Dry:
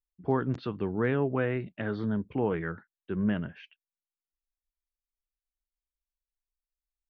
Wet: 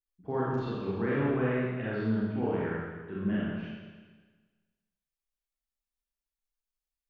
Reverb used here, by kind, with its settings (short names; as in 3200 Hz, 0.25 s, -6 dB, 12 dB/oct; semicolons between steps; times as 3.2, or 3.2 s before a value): Schroeder reverb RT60 1.4 s, combs from 28 ms, DRR -7.5 dB; gain -8.5 dB